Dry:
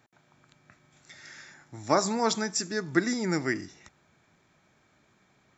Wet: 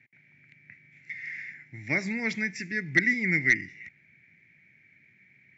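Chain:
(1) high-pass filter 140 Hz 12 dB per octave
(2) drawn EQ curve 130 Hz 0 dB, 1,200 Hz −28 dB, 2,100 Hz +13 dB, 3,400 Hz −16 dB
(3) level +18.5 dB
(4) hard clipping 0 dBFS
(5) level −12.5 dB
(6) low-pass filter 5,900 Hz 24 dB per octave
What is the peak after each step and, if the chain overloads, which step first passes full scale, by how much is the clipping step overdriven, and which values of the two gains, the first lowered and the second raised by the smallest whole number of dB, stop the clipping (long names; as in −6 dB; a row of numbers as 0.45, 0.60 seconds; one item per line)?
−8.0, −11.0, +7.5, 0.0, −12.5, −11.0 dBFS
step 3, 7.5 dB
step 3 +10.5 dB, step 5 −4.5 dB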